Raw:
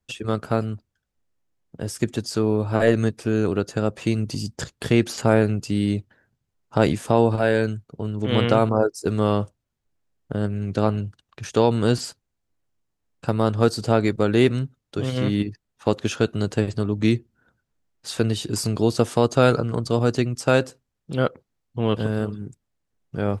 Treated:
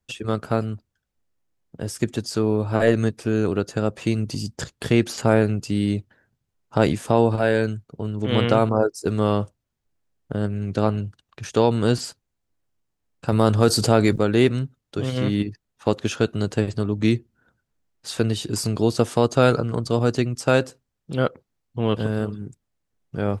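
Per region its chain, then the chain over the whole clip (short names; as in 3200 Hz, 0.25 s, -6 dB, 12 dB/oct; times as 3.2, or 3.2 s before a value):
13.32–14.18 high shelf 8300 Hz +9 dB + fast leveller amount 50%
whole clip: dry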